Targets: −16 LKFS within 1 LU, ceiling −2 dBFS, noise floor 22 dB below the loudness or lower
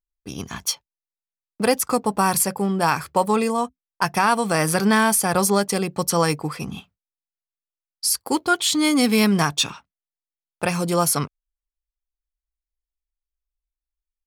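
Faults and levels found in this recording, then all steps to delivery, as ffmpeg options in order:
integrated loudness −21.0 LKFS; sample peak −6.0 dBFS; target loudness −16.0 LKFS
→ -af "volume=5dB,alimiter=limit=-2dB:level=0:latency=1"

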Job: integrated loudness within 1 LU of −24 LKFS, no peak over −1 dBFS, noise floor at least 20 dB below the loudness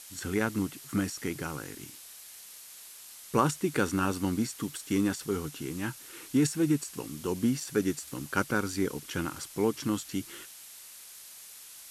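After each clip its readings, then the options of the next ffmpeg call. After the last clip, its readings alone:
background noise floor −49 dBFS; target noise floor −51 dBFS; integrated loudness −31.0 LKFS; sample peak −10.5 dBFS; target loudness −24.0 LKFS
→ -af "afftdn=noise_reduction=6:noise_floor=-49"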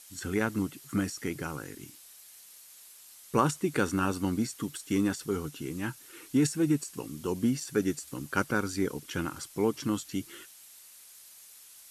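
background noise floor −53 dBFS; integrated loudness −31.0 LKFS; sample peak −10.5 dBFS; target loudness −24.0 LKFS
→ -af "volume=7dB"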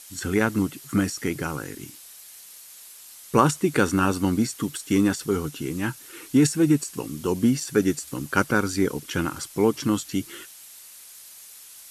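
integrated loudness −24.0 LKFS; sample peak −3.5 dBFS; background noise floor −46 dBFS

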